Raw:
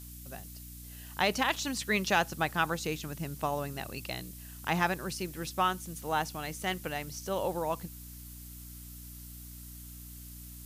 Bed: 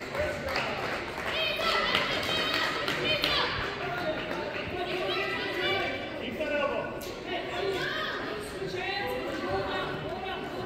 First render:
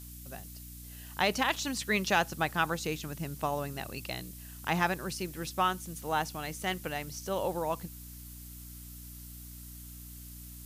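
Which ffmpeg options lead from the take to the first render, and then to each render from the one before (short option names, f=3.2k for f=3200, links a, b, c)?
-af anull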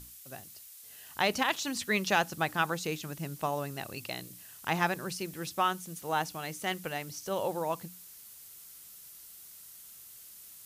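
-af "bandreject=f=60:t=h:w=6,bandreject=f=120:t=h:w=6,bandreject=f=180:t=h:w=6,bandreject=f=240:t=h:w=6,bandreject=f=300:t=h:w=6"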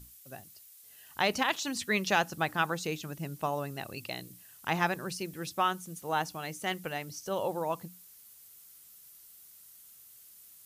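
-af "afftdn=nr=6:nf=-51"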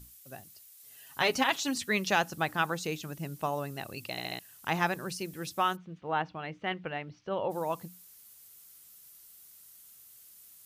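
-filter_complex "[0:a]asettb=1/sr,asplit=3[a][b][c];[a]atrim=end=0.794[d];[b]atrim=start=0.79:end=1.78,asetpts=PTS-STARTPTS,afade=t=in:d=0.004:c=qsin,afade=t=out:st=0.986:d=0.004:c=qsin,aecho=1:1:7.3:0.66,atrim=end_sample=43659[e];[c]atrim=start=1.776[f];[d][e]acrossfade=d=0.004:c1=hsin:c2=qsin[g];[g][f]acrossfade=d=0.004:c1=qsin:c2=hsin,asplit=3[h][i][j];[h]afade=t=out:st=5.75:d=0.02[k];[i]lowpass=f=3.1k:w=0.5412,lowpass=f=3.1k:w=1.3066,afade=t=in:st=5.75:d=0.02,afade=t=out:st=7.5:d=0.02[l];[j]afade=t=in:st=7.5:d=0.02[m];[k][l][m]amix=inputs=3:normalize=0,asplit=5[n][o][p][q][r];[n]atrim=end=4.182[s];[o]atrim=start=4.108:end=4.182[t];[p]atrim=start=4.108:end=4.182[u];[q]atrim=start=4.108:end=4.182[v];[r]atrim=start=4.388[w];[s][t]acrossfade=d=0.004:c1=hsin:c2=hsin[x];[x][u]acrossfade=d=0.004:c1=hsin:c2=hsin[y];[y][v]acrossfade=d=0.004:c1=hsin:c2=hsin[z];[z][w]acrossfade=d=0.004:c1=hsin:c2=hsin"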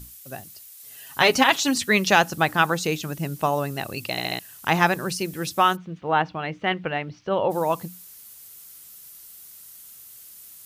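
-af "volume=9.5dB"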